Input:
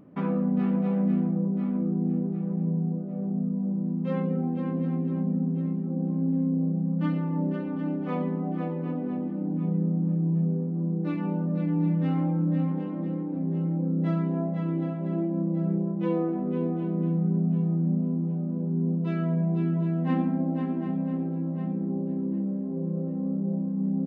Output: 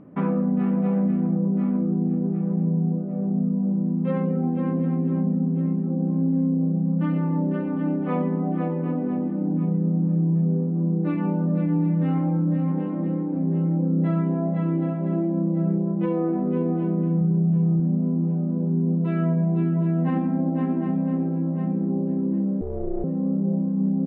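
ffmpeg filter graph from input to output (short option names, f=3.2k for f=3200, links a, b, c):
-filter_complex "[0:a]asettb=1/sr,asplit=3[a][b][c];[a]atrim=end=17.214[d];[b]atrim=start=17.21:end=17.8,asetpts=PTS-STARTPTS,afade=t=in:d=0.004:c=qsin,afade=t=out:st=0.586:d=0.004:c=qsin,lowshelf=f=330:g=6.5,bandreject=f=50:t=h:w=6,bandreject=f=100:t=h:w=6,bandreject=f=150:t=h:w=6,bandreject=f=200:t=h:w=6,bandreject=f=250:t=h:w=6,bandreject=f=300:t=h:w=6,bandreject=f=350:t=h:w=6,bandreject=f=400:t=h:w=6,bandreject=f=450:t=h:w=6[e];[c]atrim=start=17.796[f];[d][e]acrossfade=d=0.004:c1=hsin:c2=qsin[g];[g][f]acrossfade=d=0.004:c1=qsin:c2=hsin,asettb=1/sr,asplit=3[h][i][j];[h]atrim=end=22.614[k];[i]atrim=start=22.61:end=23.04,asetpts=PTS-STARTPTS,afade=t=in:d=0.004:c=qsin,afade=t=out:st=0.426:d=0.004:c=qsin,adynamicsmooth=sensitivity=7:basefreq=1.4k,aeval=exprs='val(0)*sin(2*PI*180*n/s)':c=same[l];[j]atrim=start=23.036[m];[k][l]acrossfade=d=0.004:c1=hsin:c2=qsin[n];[n][m]acrossfade=d=0.004:c1=qsin:c2=hsin,lowpass=2.4k,alimiter=limit=-20dB:level=0:latency=1:release=74,volume=5dB"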